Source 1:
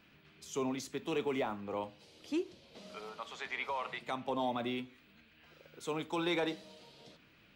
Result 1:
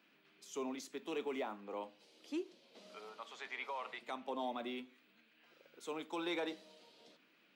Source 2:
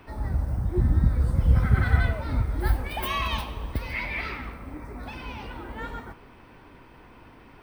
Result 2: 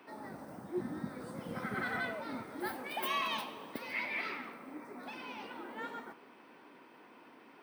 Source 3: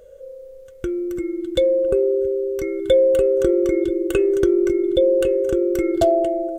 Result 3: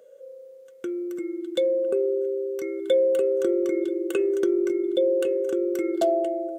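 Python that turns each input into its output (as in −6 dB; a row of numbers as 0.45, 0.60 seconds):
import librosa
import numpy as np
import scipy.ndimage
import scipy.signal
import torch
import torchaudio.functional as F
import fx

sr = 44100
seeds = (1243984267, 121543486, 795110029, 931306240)

y = scipy.signal.sosfilt(scipy.signal.butter(4, 220.0, 'highpass', fs=sr, output='sos'), x)
y = y * librosa.db_to_amplitude(-5.5)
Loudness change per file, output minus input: −5.5, −13.0, −5.5 LU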